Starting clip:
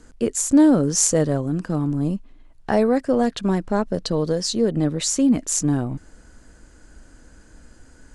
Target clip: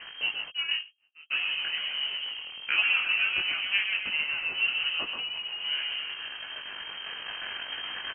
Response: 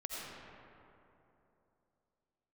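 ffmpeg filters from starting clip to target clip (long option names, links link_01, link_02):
-filter_complex "[0:a]aeval=exprs='val(0)+0.5*0.0376*sgn(val(0))':channel_layout=same,asettb=1/sr,asplit=3[link_01][link_02][link_03];[link_01]atrim=end=3.974[link_04];[link_02]atrim=start=3.97:end=4.54,asetpts=PTS-STARTPTS,afade=type=in:duration=0.004:curve=qsin,afade=type=out:start_time=0.566:duration=0.004:curve=qsin,aemphasis=mode=production:type=bsi[link_05];[link_03]atrim=start=4.536[link_06];[link_04][link_05]acrossfade=duration=0.004:curve1=hsin:curve2=qsin[link_07];[link_07][link_06]acrossfade=duration=0.004:curve1=qsin:curve2=hsin,asplit=2[link_08][link_09];[link_09]asplit=7[link_10][link_11][link_12][link_13][link_14][link_15][link_16];[link_10]adelay=132,afreqshift=42,volume=-6dB[link_17];[link_11]adelay=264,afreqshift=84,volume=-11.2dB[link_18];[link_12]adelay=396,afreqshift=126,volume=-16.4dB[link_19];[link_13]adelay=528,afreqshift=168,volume=-21.6dB[link_20];[link_14]adelay=660,afreqshift=210,volume=-26.8dB[link_21];[link_15]adelay=792,afreqshift=252,volume=-32dB[link_22];[link_16]adelay=924,afreqshift=294,volume=-37.2dB[link_23];[link_17][link_18][link_19][link_20][link_21][link_22][link_23]amix=inputs=7:normalize=0[link_24];[link_08][link_24]amix=inputs=2:normalize=0,dynaudnorm=framelen=730:gausssize=5:maxgain=11.5dB,asplit=3[link_25][link_26][link_27];[link_25]afade=type=out:start_time=0.48:duration=0.02[link_28];[link_26]agate=range=-60dB:threshold=-10dB:ratio=16:detection=peak,afade=type=in:start_time=0.48:duration=0.02,afade=type=out:start_time=1.3:duration=0.02[link_29];[link_27]afade=type=in:start_time=1.3:duration=0.02[link_30];[link_28][link_29][link_30]amix=inputs=3:normalize=0,lowshelf=frequency=390:gain=-9,acrossover=split=400[link_31][link_32];[link_31]asoftclip=type=tanh:threshold=-29.5dB[link_33];[link_33][link_32]amix=inputs=2:normalize=0,flanger=delay=18:depth=3.3:speed=2.2,lowpass=frequency=2700:width_type=q:width=0.5098,lowpass=frequency=2700:width_type=q:width=0.6013,lowpass=frequency=2700:width_type=q:width=0.9,lowpass=frequency=2700:width_type=q:width=2.563,afreqshift=-3200,asettb=1/sr,asplit=3[link_34][link_35][link_36];[link_34]atrim=end=5.174[link_37];[link_35]atrim=start=5.17:end=5.65,asetpts=PTS-STARTPTS,afade=type=in:duration=0.004:curve=qsin,afade=type=out:start_time=0.476:duration=0.004:curve=qsin,acompressor=threshold=-32dB:ratio=5[link_38];[link_36]atrim=start=5.646[link_39];[link_37][link_38]acrossfade=duration=0.004:curve1=hsin:curve2=qsin[link_40];[link_40][link_39]acrossfade=duration=0.004:curve1=qsin:curve2=hsin"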